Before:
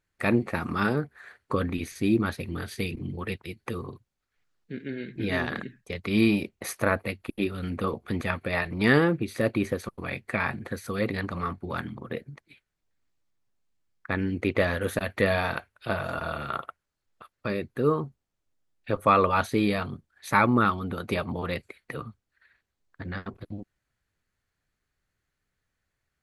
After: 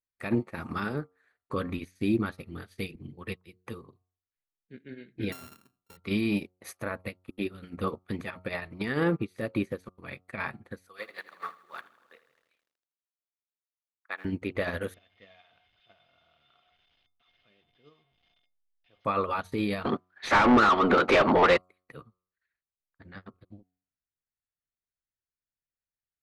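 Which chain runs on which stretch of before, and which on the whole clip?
0:05.32–0:05.97: samples sorted by size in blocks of 32 samples + high-shelf EQ 10,000 Hz +11.5 dB + expander for the loud parts, over −38 dBFS
0:10.88–0:14.25: high-pass filter 740 Hz + feedback echo at a low word length 80 ms, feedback 80%, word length 9 bits, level −8 dB
0:14.94–0:19.05: linear delta modulator 32 kbit/s, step −29 dBFS + low-pass with resonance 3,100 Hz, resonance Q 5.1 + tuned comb filter 720 Hz, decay 0.17 s, harmonics odd, mix 90%
0:19.85–0:21.57: high-pass filter 260 Hz + mid-hump overdrive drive 33 dB, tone 6,700 Hz, clips at −9 dBFS + head-to-tape spacing loss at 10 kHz 24 dB
whole clip: hum removal 91.24 Hz, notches 15; brickwall limiter −19.5 dBFS; expander for the loud parts 2.5 to 1, over −42 dBFS; level +7 dB

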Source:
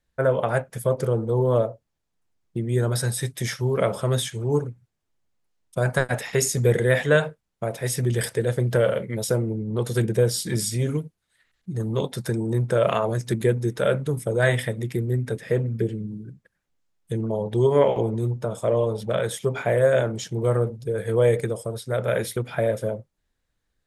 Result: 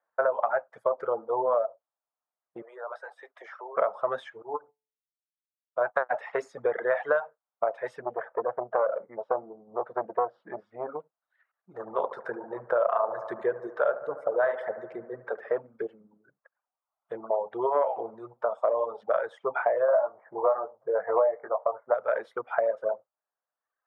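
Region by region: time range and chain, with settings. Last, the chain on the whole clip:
0:02.62–0:03.77: high-pass filter 400 Hz 24 dB per octave + downward compressor 4 to 1, threshold −36 dBFS
0:04.42–0:05.96: hum removal 145.5 Hz, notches 8 + expander for the loud parts 2.5 to 1, over −40 dBFS
0:08.02–0:11.00: low-pass filter 1,200 Hz + saturating transformer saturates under 410 Hz
0:11.75–0:15.52: dynamic equaliser 2,300 Hz, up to −6 dB, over −48 dBFS, Q 3.2 + bucket-brigade delay 73 ms, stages 1,024, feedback 70%, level −7.5 dB
0:19.88–0:21.94: Chebyshev low-pass filter 2,100 Hz, order 6 + flat-topped bell 810 Hz +9 dB 1.3 octaves + double-tracking delay 20 ms −5.5 dB
whole clip: reverb reduction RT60 1.1 s; Chebyshev band-pass filter 640–1,300 Hz, order 2; downward compressor 6 to 1, threshold −30 dBFS; level +8.5 dB

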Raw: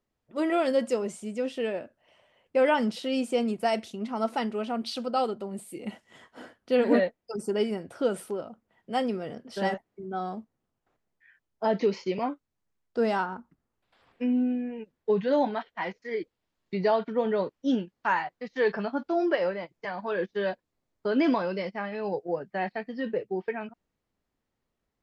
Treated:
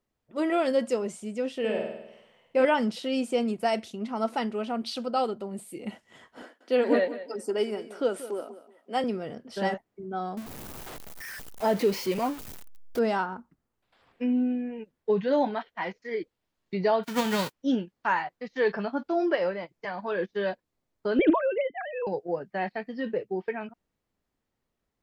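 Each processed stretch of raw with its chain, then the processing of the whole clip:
0:01.59–0:02.65: double-tracking delay 27 ms −14 dB + flutter between parallel walls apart 8.7 metres, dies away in 0.85 s
0:06.42–0:09.04: high-pass filter 250 Hz 24 dB per octave + repeating echo 184 ms, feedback 24%, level −14 dB
0:10.37–0:12.99: converter with a step at zero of −35.5 dBFS + high-shelf EQ 10,000 Hz +9 dB
0:17.03–0:17.52: spectral envelope flattened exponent 0.3 + one half of a high-frequency compander decoder only
0:21.19–0:22.07: three sine waves on the formant tracks + low-shelf EQ 220 Hz +10.5 dB + highs frequency-modulated by the lows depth 0.18 ms
whole clip: no processing

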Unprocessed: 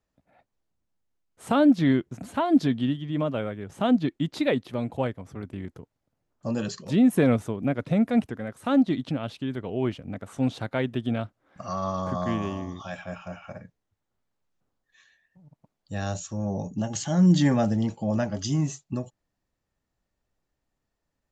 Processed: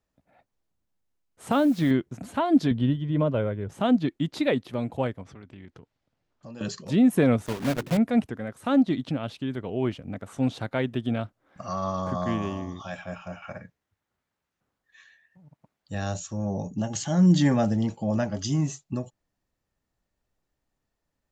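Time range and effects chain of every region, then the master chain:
0:01.51–0:01.91: downward compressor, threshold −17 dBFS + bit-depth reduction 8 bits, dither none
0:02.71–0:03.69: spectral tilt −2 dB per octave + comb filter 2 ms, depth 33%
0:05.23–0:06.61: low-pass filter 3,800 Hz + downward compressor 2.5 to 1, threshold −46 dBFS + high-shelf EQ 2,200 Hz +11.5 dB
0:07.46–0:07.98: one scale factor per block 3 bits + high-shelf EQ 5,100 Hz −4.5 dB + mains-hum notches 50/100/150/200/250/300/350/400 Hz
0:13.42–0:15.95: high-pass filter 40 Hz + parametric band 1,800 Hz +6 dB 1.7 octaves
whole clip: no processing

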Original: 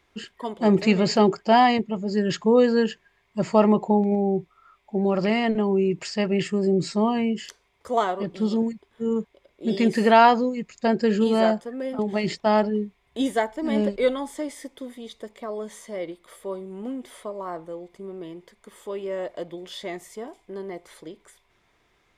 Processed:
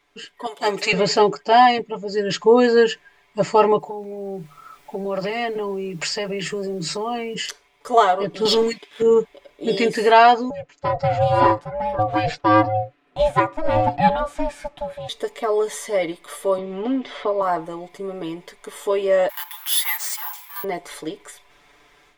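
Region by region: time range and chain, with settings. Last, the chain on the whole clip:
0:00.46–0:00.93: high-pass filter 1,100 Hz 6 dB per octave + high-shelf EQ 6,900 Hz +10 dB
0:03.78–0:07.34: Chebyshev high-pass filter 150 Hz, order 10 + downward compressor 4 to 1, threshold −33 dBFS + background noise pink −68 dBFS
0:08.45–0:09.02: meter weighting curve D + leveller curve on the samples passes 1
0:10.50–0:15.09: ring modulation 320 Hz + low-pass filter 1,800 Hz 6 dB per octave
0:16.58–0:17.42: low-pass filter 4,800 Hz 24 dB per octave + multiband upward and downward compressor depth 40%
0:19.29–0:20.64: mu-law and A-law mismatch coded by mu + Chebyshev high-pass filter 800 Hz, order 8 + bad sample-rate conversion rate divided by 3×, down none, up zero stuff
whole clip: parametric band 87 Hz −10 dB 2.6 octaves; comb filter 6.9 ms, depth 79%; automatic gain control gain up to 11.5 dB; level −1 dB

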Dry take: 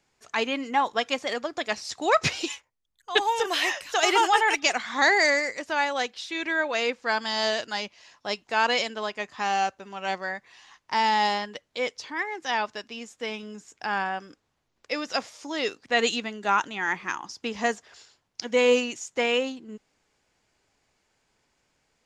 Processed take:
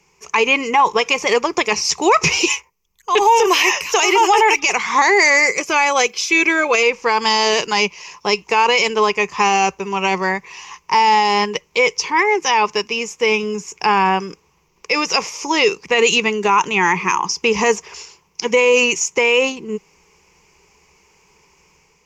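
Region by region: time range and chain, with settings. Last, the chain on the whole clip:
0:05.47–0:06.83: high-shelf EQ 9,600 Hz +12 dB + notch comb filter 940 Hz
whole clip: EQ curve with evenly spaced ripples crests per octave 0.78, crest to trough 14 dB; automatic gain control gain up to 4 dB; boost into a limiter +14 dB; level −4 dB

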